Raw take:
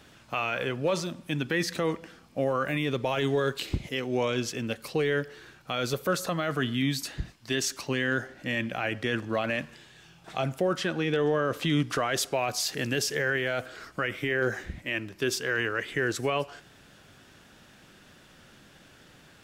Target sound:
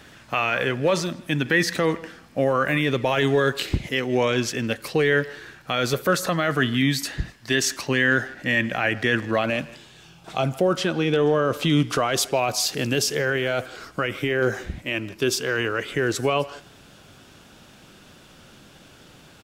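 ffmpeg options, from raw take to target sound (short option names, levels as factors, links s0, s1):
-filter_complex "[0:a]asetnsamples=n=441:p=0,asendcmd='9.44 equalizer g -6.5',equalizer=f=1800:w=3.6:g=5,asplit=2[s0][s1];[s1]adelay=160,highpass=300,lowpass=3400,asoftclip=type=hard:threshold=0.0708,volume=0.112[s2];[s0][s2]amix=inputs=2:normalize=0,volume=2"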